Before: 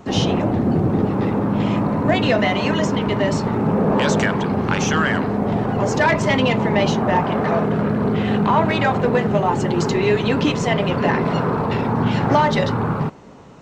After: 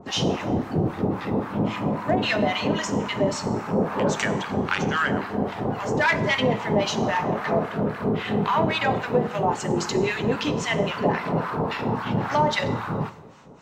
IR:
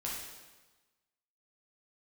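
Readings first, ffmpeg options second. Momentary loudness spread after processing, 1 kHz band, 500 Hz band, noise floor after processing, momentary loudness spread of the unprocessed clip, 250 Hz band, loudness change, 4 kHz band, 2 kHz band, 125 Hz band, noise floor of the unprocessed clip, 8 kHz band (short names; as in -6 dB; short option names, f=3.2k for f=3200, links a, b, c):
5 LU, -4.5 dB, -5.0 dB, -36 dBFS, 3 LU, -7.0 dB, -5.5 dB, -2.5 dB, -3.0 dB, -7.5 dB, -23 dBFS, -3.0 dB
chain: -filter_complex "[0:a]lowshelf=f=320:g=-5.5,acrossover=split=960[a][b];[a]aeval=exprs='val(0)*(1-1/2+1/2*cos(2*PI*3.7*n/s))':c=same[c];[b]aeval=exprs='val(0)*(1-1/2-1/2*cos(2*PI*3.7*n/s))':c=same[d];[c][d]amix=inputs=2:normalize=0,asplit=2[e][f];[1:a]atrim=start_sample=2205,highshelf=f=7k:g=10[g];[f][g]afir=irnorm=-1:irlink=0,volume=-13dB[h];[e][h]amix=inputs=2:normalize=0"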